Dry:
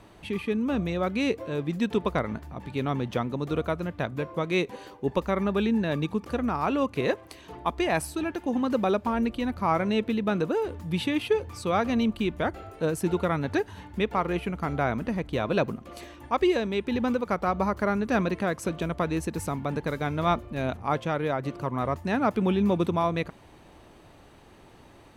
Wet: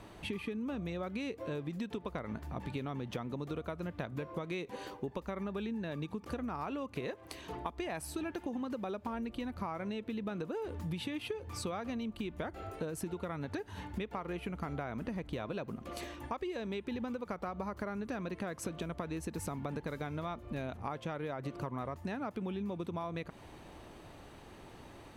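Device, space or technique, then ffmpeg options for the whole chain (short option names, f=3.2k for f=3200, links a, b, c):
serial compression, leveller first: -af "acompressor=threshold=-27dB:ratio=2.5,acompressor=threshold=-35dB:ratio=10"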